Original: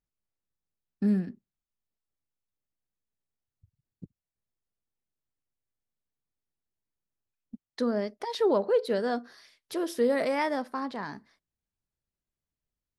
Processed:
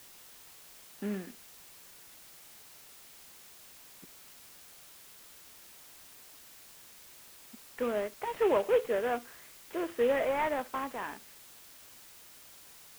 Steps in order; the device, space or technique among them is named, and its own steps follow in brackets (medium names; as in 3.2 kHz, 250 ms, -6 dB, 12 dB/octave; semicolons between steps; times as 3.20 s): army field radio (band-pass 380–2900 Hz; CVSD coder 16 kbps; white noise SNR 17 dB)